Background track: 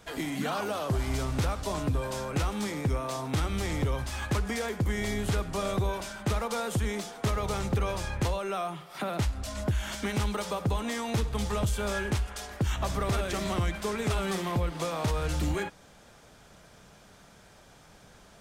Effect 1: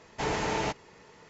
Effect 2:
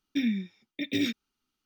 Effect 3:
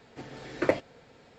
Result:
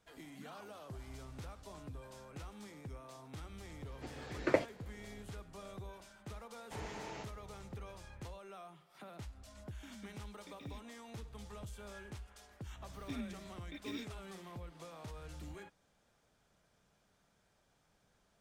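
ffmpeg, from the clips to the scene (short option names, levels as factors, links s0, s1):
-filter_complex "[2:a]asplit=2[s0][s1];[0:a]volume=0.106[s2];[s0]acompressor=threshold=0.00631:ratio=6:attack=3.2:release=140:knee=1:detection=peak[s3];[s1]acompressor=mode=upward:threshold=0.0355:ratio=4:attack=1.8:release=543:knee=2.83:detection=peak[s4];[3:a]atrim=end=1.38,asetpts=PTS-STARTPTS,volume=0.562,afade=t=in:d=0.004:c=hsin,afade=t=out:st=1.376:d=0.004:c=hsin,adelay=169785S[s5];[1:a]atrim=end=1.29,asetpts=PTS-STARTPTS,volume=0.15,afade=t=in:d=0.004:c=hsin,afade=t=out:st=1.286:d=0.004:c=hsin,adelay=6520[s6];[s3]atrim=end=1.65,asetpts=PTS-STARTPTS,volume=0.335,afade=t=in:d=0.004:c=hsin,afade=t=out:st=1.646:d=0.004:c=hsin,adelay=9680[s7];[s4]atrim=end=1.65,asetpts=PTS-STARTPTS,volume=0.158,afade=t=in:d=0.004:c=hsin,afade=t=out:st=1.646:d=0.004:c=hsin,adelay=12930[s8];[s2][s5][s6][s7][s8]amix=inputs=5:normalize=0"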